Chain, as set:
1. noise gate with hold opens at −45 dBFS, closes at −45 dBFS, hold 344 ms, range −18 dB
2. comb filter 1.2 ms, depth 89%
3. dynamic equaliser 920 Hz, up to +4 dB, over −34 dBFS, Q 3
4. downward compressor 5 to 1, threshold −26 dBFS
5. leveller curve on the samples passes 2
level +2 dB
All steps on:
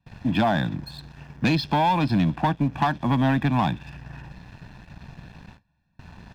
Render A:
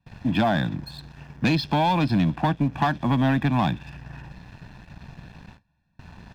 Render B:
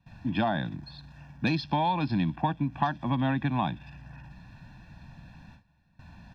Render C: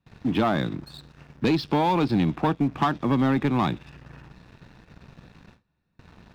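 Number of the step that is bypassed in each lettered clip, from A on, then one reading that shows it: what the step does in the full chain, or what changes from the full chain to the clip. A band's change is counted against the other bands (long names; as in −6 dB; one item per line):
3, 1 kHz band −1.5 dB
5, change in crest factor +6.0 dB
2, 500 Hz band +4.5 dB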